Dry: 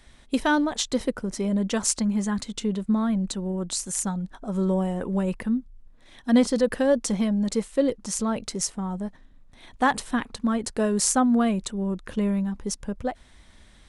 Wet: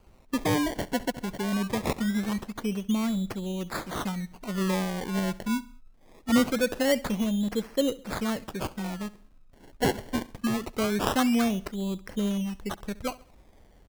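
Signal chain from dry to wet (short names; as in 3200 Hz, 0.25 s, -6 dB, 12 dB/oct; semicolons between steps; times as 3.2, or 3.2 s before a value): decimation with a swept rate 24×, swing 100% 0.23 Hz; feedback echo 68 ms, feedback 44%, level -20 dB; gain -3.5 dB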